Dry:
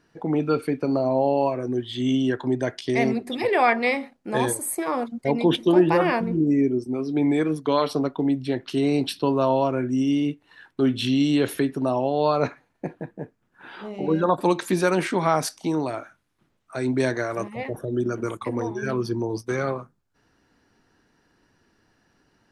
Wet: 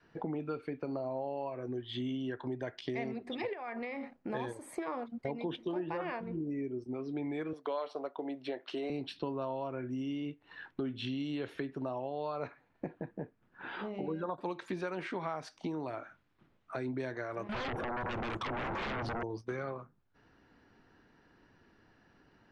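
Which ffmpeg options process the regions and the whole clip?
ffmpeg -i in.wav -filter_complex "[0:a]asettb=1/sr,asplit=3[link_01][link_02][link_03];[link_01]atrim=end=3.534[link_04];[link_02]atrim=start=3.53:end=4.3,asetpts=PTS-STARTPTS,afade=type=in:duration=0.004:curve=qsin,afade=type=out:start_time=0.766:duration=0.004:curve=qsin,equalizer=frequency=3500:width=1.9:gain=-5.5,acompressor=threshold=-30dB:ratio=6:attack=3.2:release=140:knee=1:detection=peak[link_05];[link_03]atrim=start=4.296[link_06];[link_04][link_05]acrossfade=duration=0.004:curve1=hsin:curve2=qsin[link_07];[link_07][link_06]acrossfade=duration=0.004:curve1=qsin:curve2=hsin,asettb=1/sr,asplit=3[link_08][link_09][link_10];[link_08]atrim=end=7.534[link_11];[link_09]atrim=start=7.53:end=8.9,asetpts=PTS-STARTPTS,afade=type=in:duration=0.004:curve=qsin,afade=type=out:start_time=1.366:duration=0.004:curve=qsin,highpass=420,equalizer=frequency=620:width_type=o:width=0.88:gain=6.5[link_12];[link_10]atrim=start=8.896[link_13];[link_11][link_12]acrossfade=duration=0.004:curve1=hsin:curve2=qsin[link_14];[link_14][link_13]acrossfade=duration=0.004:curve1=qsin:curve2=hsin,asettb=1/sr,asplit=3[link_15][link_16][link_17];[link_15]atrim=end=17.494[link_18];[link_16]atrim=start=17.49:end=19.23,asetpts=PTS-STARTPTS,afade=type=in:duration=0.004:curve=qsin,afade=type=out:start_time=1.736:duration=0.004:curve=qsin,acompressor=threshold=-36dB:ratio=4:attack=3.2:release=140:knee=1:detection=peak,highshelf=frequency=5200:gain=-9,aeval=exprs='0.0596*sin(PI/2*7.08*val(0)/0.0596)':channel_layout=same[link_19];[link_17]atrim=start=19.226[link_20];[link_18][link_19]acrossfade=duration=0.004:curve1=hsin:curve2=qsin[link_21];[link_21][link_20]acrossfade=duration=0.004:curve1=qsin:curve2=hsin,lowpass=3400,adynamicequalizer=threshold=0.02:dfrequency=220:dqfactor=1:tfrequency=220:tqfactor=1:attack=5:release=100:ratio=0.375:range=3:mode=cutabove:tftype=bell,acompressor=threshold=-37dB:ratio=4" out.wav

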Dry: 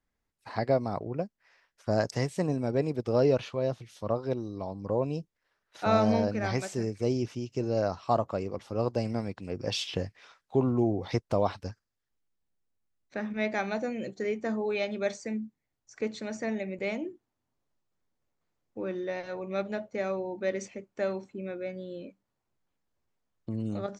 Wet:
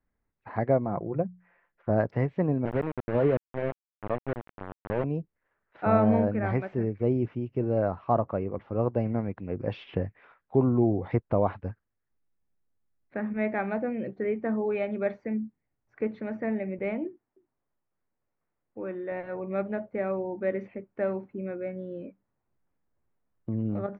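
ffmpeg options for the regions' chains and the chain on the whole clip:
ffmpeg -i in.wav -filter_complex "[0:a]asettb=1/sr,asplit=3[link_01][link_02][link_03];[link_01]atrim=end=0.854[link_04];[link_02]atrim=start=0.85:end=1.9,asetpts=PTS-STARTPTS,afade=type=in:duration=0.004:curve=qsin,afade=type=out:start_time=1.046:duration=0.004:curve=qsin,highshelf=frequency=3400:gain=-7.5,bandreject=frequency=60:width_type=h:width=6,bandreject=frequency=120:width_type=h:width=6,bandreject=frequency=180:width_type=h:width=6,aecho=1:1:5.8:0.43,atrim=end_sample=46305[link_05];[link_03]atrim=start=1.896[link_06];[link_04][link_05]acrossfade=duration=0.004:curve1=hsin:curve2=qsin[link_07];[link_07][link_06]acrossfade=duration=0.004:curve1=qsin:curve2=hsin,asettb=1/sr,asplit=3[link_08][link_09][link_10];[link_08]atrim=end=2.654[link_11];[link_09]atrim=start=2.65:end=5.04,asetpts=PTS-STARTPTS,afade=type=in:duration=0.004:curve=qsin,afade=type=out:start_time=2.386:duration=0.004:curve=qsin,acrossover=split=490[link_12][link_13];[link_12]aeval=exprs='val(0)*(1-0.5/2+0.5/2*cos(2*PI*9.8*n/s))':channel_layout=same[link_14];[link_13]aeval=exprs='val(0)*(1-0.5/2-0.5/2*cos(2*PI*9.8*n/s))':channel_layout=same[link_15];[link_14][link_15]amix=inputs=2:normalize=0,aeval=exprs='val(0)*gte(abs(val(0)),0.0316)':channel_layout=same[link_16];[link_10]atrim=start=5.036[link_17];[link_11][link_16]acrossfade=duration=0.004:curve1=hsin:curve2=qsin[link_18];[link_18][link_17]acrossfade=duration=0.004:curve1=qsin:curve2=hsin,asettb=1/sr,asplit=3[link_19][link_20][link_21];[link_19]atrim=end=17.074[link_22];[link_20]atrim=start=17.07:end=19.12,asetpts=PTS-STARTPTS,afade=type=in:duration=0.004:curve=qsin,afade=type=out:start_time=2.046:duration=0.004:curve=qsin,lowshelf=frequency=350:gain=-7.5,aecho=1:1:293:0.106,atrim=end_sample=90405[link_23];[link_21]atrim=start=19.116[link_24];[link_22][link_23]acrossfade=duration=0.004:curve1=hsin:curve2=qsin[link_25];[link_25][link_24]acrossfade=duration=0.004:curve1=qsin:curve2=hsin,lowpass=frequency=2200:width=0.5412,lowpass=frequency=2200:width=1.3066,lowshelf=frequency=450:gain=4" out.wav

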